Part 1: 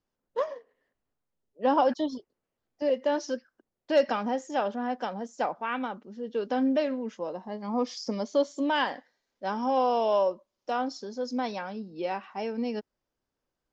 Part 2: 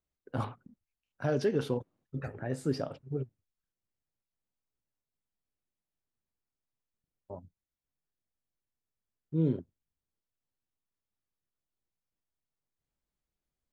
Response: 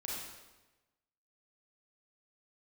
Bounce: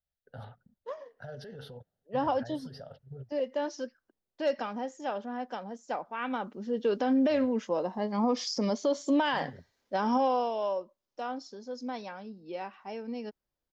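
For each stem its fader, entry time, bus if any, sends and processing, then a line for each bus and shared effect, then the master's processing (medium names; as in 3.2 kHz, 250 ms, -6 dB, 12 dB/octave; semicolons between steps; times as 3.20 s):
6.14 s -15.5 dB -> 6.57 s -5.5 dB -> 10.16 s -5.5 dB -> 10.52 s -17 dB, 0.50 s, no send, level rider gain up to 10.5 dB
-2.5 dB, 0.00 s, no send, peak limiter -30 dBFS, peak gain reduction 11.5 dB; static phaser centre 1.6 kHz, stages 8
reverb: none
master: peak limiter -19 dBFS, peak gain reduction 9 dB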